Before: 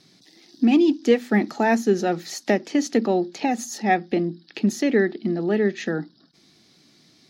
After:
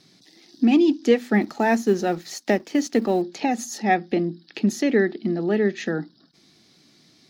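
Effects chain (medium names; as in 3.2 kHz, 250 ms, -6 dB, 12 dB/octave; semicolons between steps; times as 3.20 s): 1.41–3.22 s: companding laws mixed up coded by A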